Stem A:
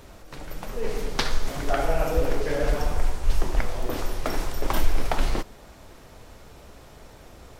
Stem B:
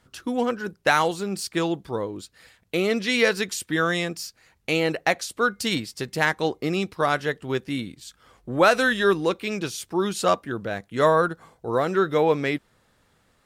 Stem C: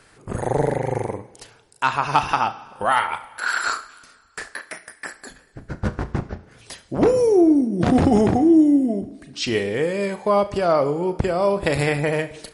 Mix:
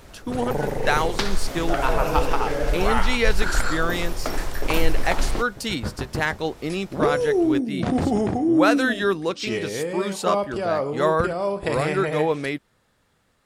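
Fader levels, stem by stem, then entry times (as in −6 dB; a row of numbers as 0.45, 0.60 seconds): +0.5, −2.0, −5.5 decibels; 0.00, 0.00, 0.00 seconds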